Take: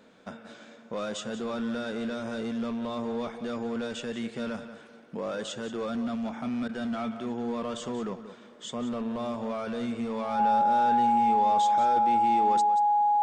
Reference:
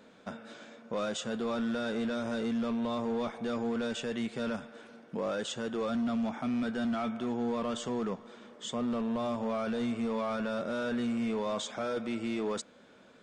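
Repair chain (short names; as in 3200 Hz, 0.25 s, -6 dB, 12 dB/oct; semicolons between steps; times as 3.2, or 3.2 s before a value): notch 830 Hz, Q 30; interpolate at 6.68, 10 ms; inverse comb 0.182 s -12.5 dB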